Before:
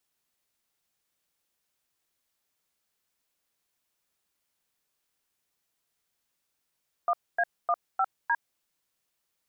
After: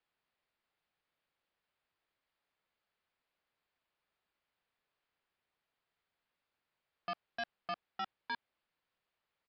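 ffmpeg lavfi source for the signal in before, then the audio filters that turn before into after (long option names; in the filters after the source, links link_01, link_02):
-f lavfi -i "aevalsrc='0.0596*clip(min(mod(t,0.304),0.053-mod(t,0.304))/0.002,0,1)*(eq(floor(t/0.304),0)*(sin(2*PI*697*mod(t,0.304))+sin(2*PI*1209*mod(t,0.304)))+eq(floor(t/0.304),1)*(sin(2*PI*697*mod(t,0.304))+sin(2*PI*1633*mod(t,0.304)))+eq(floor(t/0.304),2)*(sin(2*PI*697*mod(t,0.304))+sin(2*PI*1209*mod(t,0.304)))+eq(floor(t/0.304),3)*(sin(2*PI*770*mod(t,0.304))+sin(2*PI*1336*mod(t,0.304)))+eq(floor(t/0.304),4)*(sin(2*PI*941*mod(t,0.304))+sin(2*PI*1633*mod(t,0.304))))':duration=1.52:sample_rate=44100"
-af "bass=frequency=250:gain=-3,treble=frequency=4000:gain=-14,aresample=11025,asoftclip=type=tanh:threshold=-35dB,aresample=44100,equalizer=frequency=290:width=1.5:gain=-3"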